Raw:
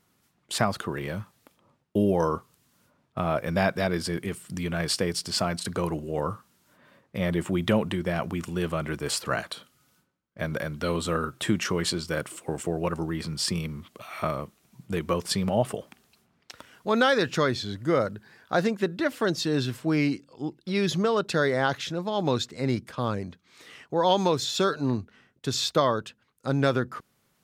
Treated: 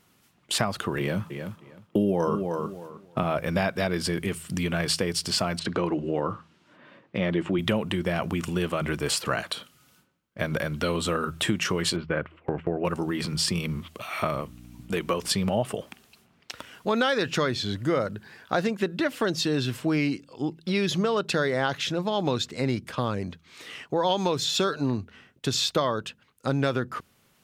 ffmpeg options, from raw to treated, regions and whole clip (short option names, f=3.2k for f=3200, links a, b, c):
-filter_complex "[0:a]asettb=1/sr,asplit=3[a][b][c];[a]atrim=end=0.994[d];[b]atrim=start=0.99:end=3.23,asetpts=PTS-STARTPTS,afade=t=in:d=0.004:c=qsin,afade=t=out:st=2.236:d=0.004:c=qsin,highpass=150,lowshelf=f=360:g=7.5,asplit=2[e][f];[f]adelay=310,lowpass=f=4.9k:p=1,volume=-10dB,asplit=2[g][h];[h]adelay=310,lowpass=f=4.9k:p=1,volume=0.19,asplit=2[i][j];[j]adelay=310,lowpass=f=4.9k:p=1,volume=0.19[k];[e][g][i][k]amix=inputs=4:normalize=0,atrim=end_sample=98784[l];[c]atrim=start=3.226[m];[d][l]acrossfade=d=0.004:c1=hsin:c2=qsin[n];[n][m]acrossfade=d=0.004:c1=qsin:c2=hsin,asettb=1/sr,asplit=3[o][p][q];[o]atrim=end=5.594[r];[p]atrim=start=5.59:end=7.59,asetpts=PTS-STARTPTS,afade=t=in:d=0.004:c=qsin,afade=t=out:st=1.996:d=0.004:c=qsin,highpass=120,lowpass=3.9k,equalizer=f=320:w=6:g=6.5[s];[q]atrim=start=7.586[t];[r][s]acrossfade=d=0.004:c1=hsin:c2=qsin[u];[u][t]acrossfade=d=0.004:c1=qsin:c2=hsin,asettb=1/sr,asplit=3[v][w][x];[v]atrim=end=11.964[y];[w]atrim=start=11.96:end=12.85,asetpts=PTS-STARTPTS,afade=t=in:d=0.004:c=qsin,afade=t=out:st=0.886:d=0.004:c=qsin,lowpass=f=2.4k:w=0.5412,lowpass=f=2.4k:w=1.3066,agate=range=-11dB:threshold=-41dB:ratio=16:release=100:detection=peak[z];[x]atrim=start=12.846[aa];[y][z]acrossfade=d=0.004:c1=hsin:c2=qsin[ab];[ab][aa]acrossfade=d=0.004:c1=qsin:c2=hsin,asettb=1/sr,asplit=3[ac][ad][ae];[ac]atrim=end=14.414[af];[ad]atrim=start=14.41:end=15.28,asetpts=PTS-STARTPTS,afade=t=in:d=0.004:c=qsin,afade=t=out:st=0.866:d=0.004:c=qsin,aeval=exprs='val(0)+0.00794*(sin(2*PI*60*n/s)+sin(2*PI*2*60*n/s)/2+sin(2*PI*3*60*n/s)/3+sin(2*PI*4*60*n/s)/4+sin(2*PI*5*60*n/s)/5)':c=same,highpass=f=240:p=1[ag];[ae]atrim=start=15.276[ah];[af][ag]acrossfade=d=0.004:c1=hsin:c2=qsin[ai];[ai][ah]acrossfade=d=0.004:c1=qsin:c2=hsin,equalizer=f=2.8k:w=2.4:g=4,bandreject=f=81.16:t=h:w=4,bandreject=f=162.32:t=h:w=4,acompressor=threshold=-29dB:ratio=2.5,volume=5dB"